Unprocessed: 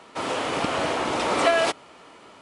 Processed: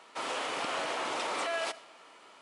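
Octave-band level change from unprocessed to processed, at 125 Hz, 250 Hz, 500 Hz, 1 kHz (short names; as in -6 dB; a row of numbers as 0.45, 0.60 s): -20.5, -15.5, -12.5, -9.0 dB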